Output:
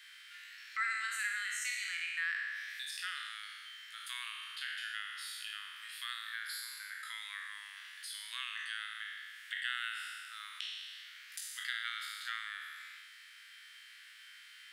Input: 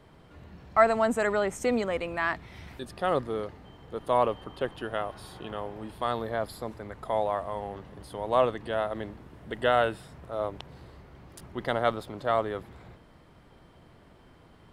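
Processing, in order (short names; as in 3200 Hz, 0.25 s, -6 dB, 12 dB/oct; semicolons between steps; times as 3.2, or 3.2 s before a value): spectral trails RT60 1.17 s; steep high-pass 1600 Hz 48 dB/oct; harmonic-percussive split harmonic +4 dB; compressor 2:1, threshold -54 dBFS, peak gain reduction 17.5 dB; gain +7.5 dB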